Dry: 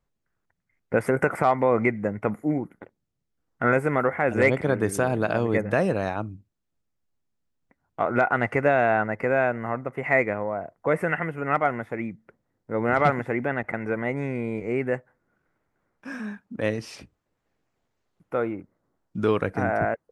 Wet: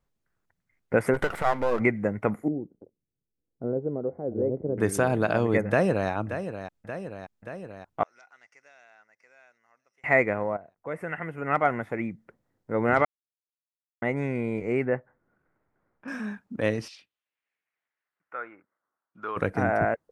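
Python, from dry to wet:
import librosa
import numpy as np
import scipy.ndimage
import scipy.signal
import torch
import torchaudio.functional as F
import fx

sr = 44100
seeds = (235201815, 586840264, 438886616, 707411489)

y = fx.halfwave_gain(x, sr, db=-12.0, at=(1.13, 1.79), fade=0.02)
y = fx.ladder_lowpass(y, sr, hz=560.0, resonance_pct=35, at=(2.48, 4.78))
y = fx.echo_throw(y, sr, start_s=5.68, length_s=0.42, ms=580, feedback_pct=70, wet_db=-10.0)
y = fx.bandpass_q(y, sr, hz=5700.0, q=9.1, at=(8.03, 10.04))
y = fx.lowpass(y, sr, hz=2000.0, slope=12, at=(14.85, 16.08))
y = fx.filter_lfo_bandpass(y, sr, shape='saw_down', hz=fx.line((16.87, 0.6), (19.36, 0.1)), low_hz=900.0, high_hz=4900.0, q=2.4, at=(16.87, 19.36), fade=0.02)
y = fx.edit(y, sr, fx.fade_in_from(start_s=10.57, length_s=1.09, curve='qua', floor_db=-14.0),
    fx.silence(start_s=13.05, length_s=0.97), tone=tone)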